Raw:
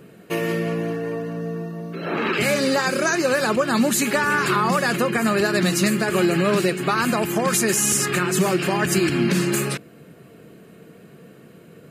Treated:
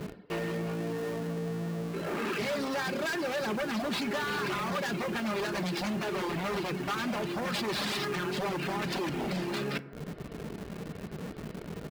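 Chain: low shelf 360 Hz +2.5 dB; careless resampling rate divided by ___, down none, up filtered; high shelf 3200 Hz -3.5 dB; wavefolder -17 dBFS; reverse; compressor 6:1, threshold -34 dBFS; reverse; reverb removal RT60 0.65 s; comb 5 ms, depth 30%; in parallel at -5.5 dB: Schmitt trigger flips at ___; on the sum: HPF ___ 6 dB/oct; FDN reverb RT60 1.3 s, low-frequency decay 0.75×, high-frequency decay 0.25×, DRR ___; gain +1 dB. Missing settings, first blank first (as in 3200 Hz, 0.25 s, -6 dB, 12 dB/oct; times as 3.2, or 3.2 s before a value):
4×, -42.5 dBFS, 93 Hz, 13.5 dB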